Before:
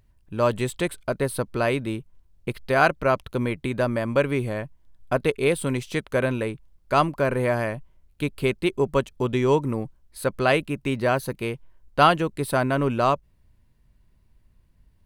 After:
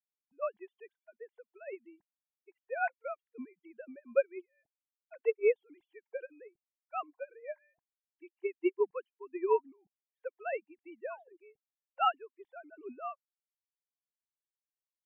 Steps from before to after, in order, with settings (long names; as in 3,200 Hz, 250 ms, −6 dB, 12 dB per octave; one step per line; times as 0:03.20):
three sine waves on the formant tracks
sound drawn into the spectrogram fall, 0:11.10–0:11.37, 320–1,200 Hz −27 dBFS
noise reduction from a noise print of the clip's start 14 dB
expander for the loud parts 2.5 to 1, over −31 dBFS
level −7.5 dB